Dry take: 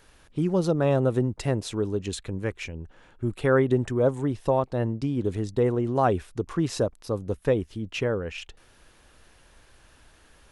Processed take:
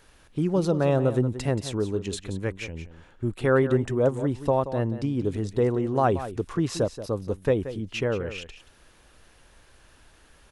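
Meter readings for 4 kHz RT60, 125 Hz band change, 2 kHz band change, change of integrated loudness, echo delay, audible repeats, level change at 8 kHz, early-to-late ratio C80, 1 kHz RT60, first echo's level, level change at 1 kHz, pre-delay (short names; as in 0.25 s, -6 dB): none, +0.5 dB, 0.0 dB, 0.0 dB, 0.179 s, 1, 0.0 dB, none, none, -12.5 dB, 0.0 dB, none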